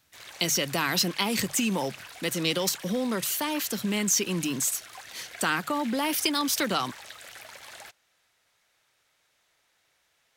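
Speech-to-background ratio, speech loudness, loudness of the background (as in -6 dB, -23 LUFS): 16.5 dB, -27.0 LUFS, -43.5 LUFS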